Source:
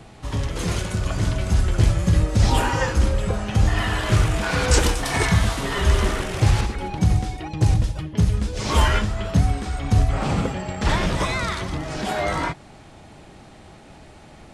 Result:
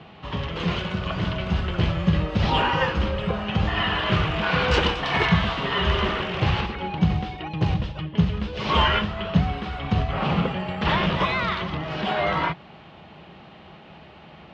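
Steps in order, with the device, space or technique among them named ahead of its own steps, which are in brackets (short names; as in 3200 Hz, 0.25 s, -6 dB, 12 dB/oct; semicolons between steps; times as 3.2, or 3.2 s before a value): guitar cabinet (speaker cabinet 86–3900 Hz, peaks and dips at 110 Hz -8 dB, 170 Hz +5 dB, 280 Hz -6 dB, 1100 Hz +4 dB, 2900 Hz +7 dB)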